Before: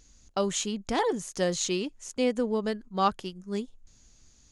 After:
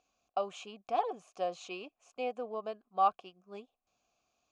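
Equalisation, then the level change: vowel filter a; +4.5 dB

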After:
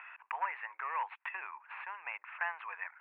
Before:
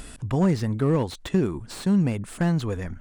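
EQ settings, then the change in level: elliptic high-pass 930 Hz, stop band 80 dB; Chebyshev low-pass 2600 Hz, order 6; dynamic EQ 1300 Hz, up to -3 dB, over -51 dBFS, Q 2.6; +3.0 dB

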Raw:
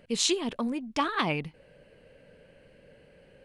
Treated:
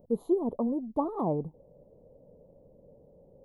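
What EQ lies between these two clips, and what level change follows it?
inverse Chebyshev band-stop 1500–8600 Hz, stop band 40 dB; dynamic EQ 480 Hz, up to +4 dB, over -45 dBFS, Q 1.3; dynamic EQ 1100 Hz, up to +5 dB, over -50 dBFS, Q 2.6; 0.0 dB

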